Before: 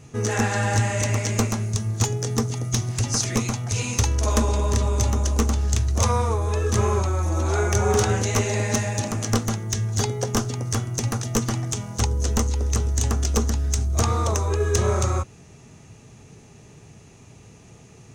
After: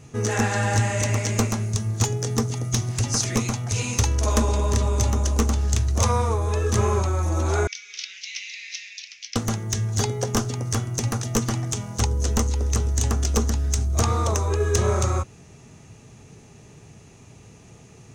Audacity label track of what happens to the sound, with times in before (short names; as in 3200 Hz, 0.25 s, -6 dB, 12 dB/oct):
7.670000	9.360000	elliptic band-pass 2200–5400 Hz, stop band 50 dB